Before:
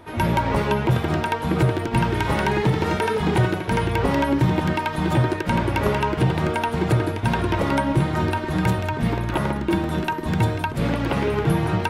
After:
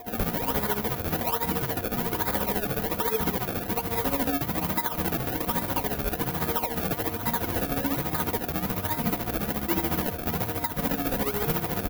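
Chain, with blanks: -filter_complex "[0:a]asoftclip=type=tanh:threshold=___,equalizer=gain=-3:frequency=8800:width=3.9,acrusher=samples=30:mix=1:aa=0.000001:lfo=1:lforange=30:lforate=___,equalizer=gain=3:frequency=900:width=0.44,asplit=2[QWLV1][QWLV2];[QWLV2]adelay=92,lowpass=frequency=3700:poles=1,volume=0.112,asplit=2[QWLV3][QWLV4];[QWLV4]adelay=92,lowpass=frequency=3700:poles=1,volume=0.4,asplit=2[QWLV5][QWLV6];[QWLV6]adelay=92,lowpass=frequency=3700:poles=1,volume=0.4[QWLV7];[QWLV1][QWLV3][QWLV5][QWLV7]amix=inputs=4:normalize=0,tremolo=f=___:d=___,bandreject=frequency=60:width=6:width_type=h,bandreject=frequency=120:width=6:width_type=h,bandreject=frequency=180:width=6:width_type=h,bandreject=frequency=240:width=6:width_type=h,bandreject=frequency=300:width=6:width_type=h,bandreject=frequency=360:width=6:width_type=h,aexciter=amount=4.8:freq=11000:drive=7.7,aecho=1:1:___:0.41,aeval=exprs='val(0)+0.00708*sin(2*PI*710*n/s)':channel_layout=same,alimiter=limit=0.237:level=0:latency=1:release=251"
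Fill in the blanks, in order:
0.133, 1.2, 14, 0.72, 4.1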